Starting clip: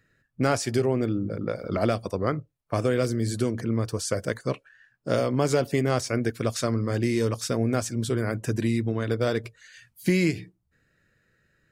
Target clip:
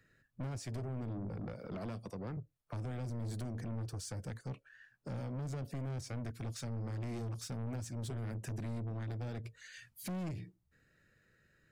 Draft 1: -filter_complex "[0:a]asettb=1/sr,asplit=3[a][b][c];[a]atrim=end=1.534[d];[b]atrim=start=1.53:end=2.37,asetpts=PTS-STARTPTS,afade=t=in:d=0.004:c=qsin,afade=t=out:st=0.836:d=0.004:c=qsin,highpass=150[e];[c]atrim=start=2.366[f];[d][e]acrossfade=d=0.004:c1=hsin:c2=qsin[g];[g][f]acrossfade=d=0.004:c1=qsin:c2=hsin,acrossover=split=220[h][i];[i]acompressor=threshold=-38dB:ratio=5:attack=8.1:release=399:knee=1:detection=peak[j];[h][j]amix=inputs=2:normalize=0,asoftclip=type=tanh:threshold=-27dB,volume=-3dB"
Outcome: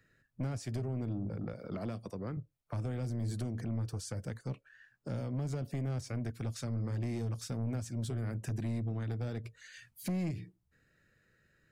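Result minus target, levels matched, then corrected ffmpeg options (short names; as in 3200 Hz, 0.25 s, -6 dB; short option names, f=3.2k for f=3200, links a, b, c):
soft clip: distortion -5 dB
-filter_complex "[0:a]asettb=1/sr,asplit=3[a][b][c];[a]atrim=end=1.534[d];[b]atrim=start=1.53:end=2.37,asetpts=PTS-STARTPTS,afade=t=in:d=0.004:c=qsin,afade=t=out:st=0.836:d=0.004:c=qsin,highpass=150[e];[c]atrim=start=2.366[f];[d][e]acrossfade=d=0.004:c1=hsin:c2=qsin[g];[g][f]acrossfade=d=0.004:c1=qsin:c2=hsin,acrossover=split=220[h][i];[i]acompressor=threshold=-38dB:ratio=5:attack=8.1:release=399:knee=1:detection=peak[j];[h][j]amix=inputs=2:normalize=0,asoftclip=type=tanh:threshold=-34dB,volume=-3dB"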